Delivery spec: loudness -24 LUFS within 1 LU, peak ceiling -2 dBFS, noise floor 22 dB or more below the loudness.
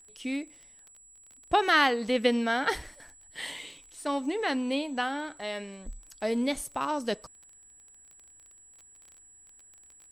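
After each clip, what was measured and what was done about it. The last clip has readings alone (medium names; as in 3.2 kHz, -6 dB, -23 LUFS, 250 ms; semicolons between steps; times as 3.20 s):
tick rate 19 per s; steady tone 7.8 kHz; tone level -53 dBFS; loudness -29.0 LUFS; peak level -10.5 dBFS; loudness target -24.0 LUFS
-> de-click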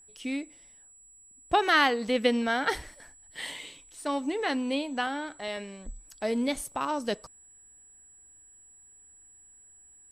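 tick rate 0.099 per s; steady tone 7.8 kHz; tone level -53 dBFS
-> band-stop 7.8 kHz, Q 30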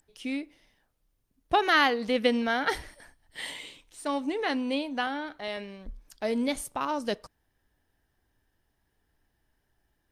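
steady tone not found; loudness -29.0 LUFS; peak level -10.5 dBFS; loudness target -24.0 LUFS
-> trim +5 dB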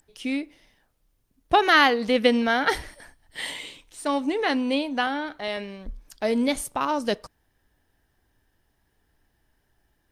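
loudness -24.0 LUFS; peak level -5.5 dBFS; noise floor -71 dBFS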